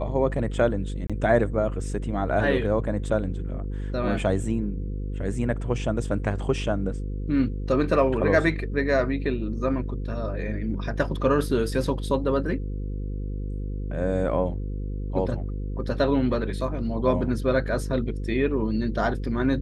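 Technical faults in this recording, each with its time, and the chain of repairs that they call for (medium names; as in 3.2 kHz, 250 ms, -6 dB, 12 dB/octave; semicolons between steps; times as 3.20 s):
buzz 50 Hz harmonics 10 -30 dBFS
1.07–1.10 s: dropout 26 ms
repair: de-hum 50 Hz, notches 10; interpolate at 1.07 s, 26 ms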